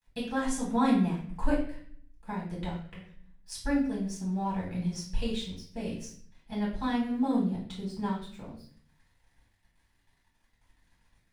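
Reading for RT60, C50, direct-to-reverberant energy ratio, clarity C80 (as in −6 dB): 0.55 s, 5.0 dB, −6.5 dB, 8.5 dB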